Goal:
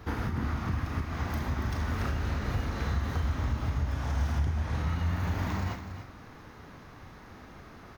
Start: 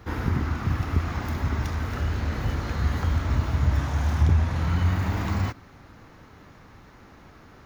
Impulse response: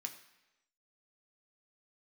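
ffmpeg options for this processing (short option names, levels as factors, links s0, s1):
-filter_complex "[0:a]alimiter=limit=0.0794:level=0:latency=1:release=318,aecho=1:1:272:0.299,asplit=2[s0][s1];[1:a]atrim=start_sample=2205,adelay=35[s2];[s1][s2]afir=irnorm=-1:irlink=0,volume=0.596[s3];[s0][s3]amix=inputs=2:normalize=0,asetrate=42336,aresample=44100"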